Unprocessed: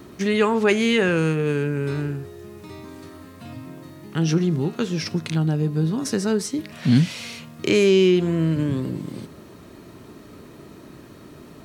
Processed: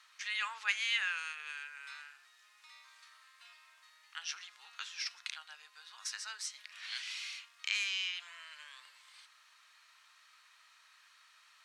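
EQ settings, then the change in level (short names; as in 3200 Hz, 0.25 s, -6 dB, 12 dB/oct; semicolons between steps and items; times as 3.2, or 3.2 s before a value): Bessel high-pass 1900 Hz, order 6; air absorption 62 m; -4.5 dB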